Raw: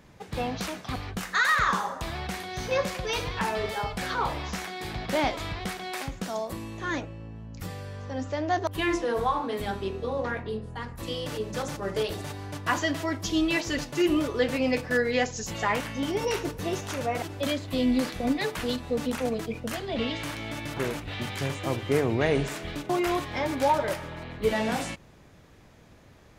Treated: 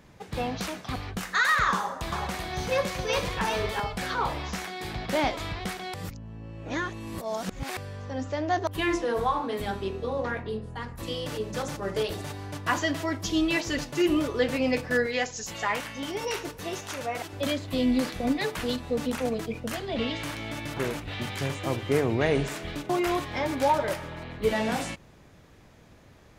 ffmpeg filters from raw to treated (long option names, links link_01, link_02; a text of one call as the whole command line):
ffmpeg -i in.wav -filter_complex "[0:a]asettb=1/sr,asplit=3[link_01][link_02][link_03];[link_01]atrim=end=1.744[link_04];[link_02]atrim=start=1.74:end=3.8,asetpts=PTS-STARTPTS,afade=type=in:duration=0.004:curve=qsin,afade=type=out:start_time=2.056:duration=0.004:curve=qsin,aecho=1:1:380:0.596,atrim=end_sample=90846[link_05];[link_03]atrim=start=3.796[link_06];[link_04][link_05]acrossfade=duration=0.004:curve1=hsin:curve2=qsin[link_07];[link_07][link_06]acrossfade=duration=0.004:curve1=qsin:curve2=hsin,asettb=1/sr,asplit=3[link_08][link_09][link_10];[link_08]atrim=end=15.064[link_11];[link_09]atrim=start=15.06:end=17.33,asetpts=PTS-STARTPTS,afade=type=in:duration=0.004:curve=qsin,afade=type=out:start_time=2.266:duration=0.004:curve=qsin,lowshelf=frequency=480:gain=-8[link_12];[link_10]atrim=start=17.326[link_13];[link_11][link_12]acrossfade=duration=0.004:curve1=hsin:curve2=qsin[link_14];[link_14][link_13]acrossfade=duration=0.004:curve1=qsin:curve2=hsin,asplit=3[link_15][link_16][link_17];[link_15]atrim=end=5.942[link_18];[link_16]atrim=start=5.938:end=7.772,asetpts=PTS-STARTPTS,areverse[link_19];[link_17]atrim=start=7.768[link_20];[link_18][link_19]acrossfade=duration=0.004:curve1=hsin:curve2=hsin[link_21];[link_21][link_20]acrossfade=duration=0.004:curve1=hsin:curve2=hsin" out.wav